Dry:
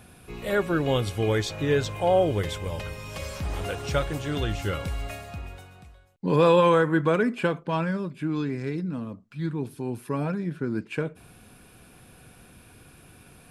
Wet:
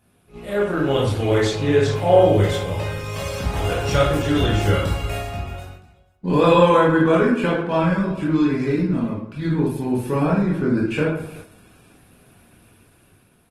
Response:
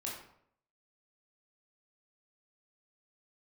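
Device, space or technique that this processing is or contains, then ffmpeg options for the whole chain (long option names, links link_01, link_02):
speakerphone in a meeting room: -filter_complex "[1:a]atrim=start_sample=2205[link_01];[0:a][link_01]afir=irnorm=-1:irlink=0,asplit=2[link_02][link_03];[link_03]adelay=380,highpass=300,lowpass=3400,asoftclip=type=hard:threshold=-14.5dB,volume=-20dB[link_04];[link_02][link_04]amix=inputs=2:normalize=0,dynaudnorm=framelen=150:gausssize=13:maxgain=9dB,agate=range=-8dB:threshold=-37dB:ratio=16:detection=peak" -ar 48000 -c:a libopus -b:a 20k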